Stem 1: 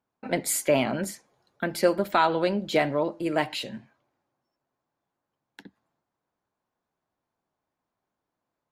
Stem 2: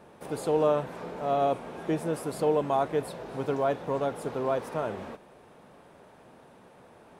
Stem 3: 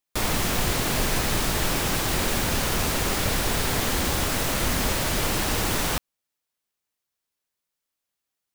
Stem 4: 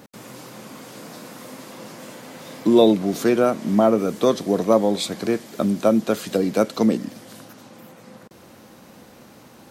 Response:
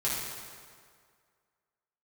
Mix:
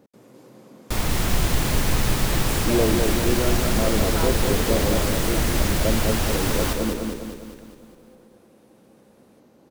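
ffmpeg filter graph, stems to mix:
-filter_complex "[0:a]adelay=2000,volume=-12dB[link_01];[1:a]crystalizer=i=8:c=0,adelay=2200,volume=-18dB[link_02];[2:a]adelay=750,volume=-2.5dB,asplit=2[link_03][link_04];[link_04]volume=-5dB[link_05];[3:a]equalizer=frequency=410:width=0.76:gain=10.5,volume=-18dB,asplit=2[link_06][link_07];[link_07]volume=-4dB[link_08];[link_05][link_08]amix=inputs=2:normalize=0,aecho=0:1:203|406|609|812|1015|1218|1421|1624:1|0.53|0.281|0.149|0.0789|0.0418|0.0222|0.0117[link_09];[link_01][link_02][link_03][link_06][link_09]amix=inputs=5:normalize=0,lowshelf=frequency=190:gain=8"

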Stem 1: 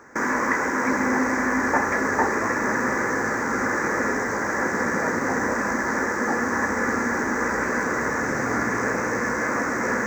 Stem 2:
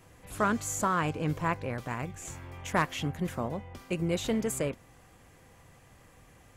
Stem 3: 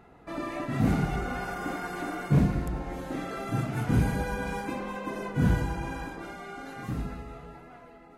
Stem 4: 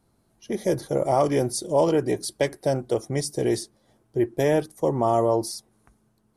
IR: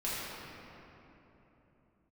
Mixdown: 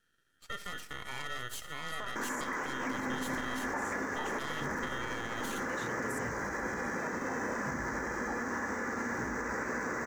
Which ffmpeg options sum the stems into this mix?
-filter_complex "[0:a]adelay=2000,volume=-10.5dB[link_01];[1:a]highpass=480,adelay=1600,volume=-4dB[link_02];[2:a]adelay=2300,volume=-10dB[link_03];[3:a]equalizer=frequency=250:width_type=o:width=1:gain=7,equalizer=frequency=500:width_type=o:width=1:gain=-11,equalizer=frequency=1000:width_type=o:width=1:gain=-11,equalizer=frequency=4000:width_type=o:width=1:gain=8,aeval=exprs='val(0)*sin(2*PI*1600*n/s)':channel_layout=same,aeval=exprs='max(val(0),0)':channel_layout=same,volume=-4.5dB,asplit=2[link_04][link_05];[link_05]volume=-17.5dB[link_06];[link_02][link_03]amix=inputs=2:normalize=0,acompressor=threshold=-40dB:ratio=6,volume=0dB[link_07];[link_06]aecho=0:1:66|132|198|264|330|396|462|528:1|0.53|0.281|0.149|0.0789|0.0418|0.0222|0.0117[link_08];[link_01][link_04][link_07][link_08]amix=inputs=4:normalize=0,alimiter=level_in=2dB:limit=-24dB:level=0:latency=1:release=61,volume=-2dB"

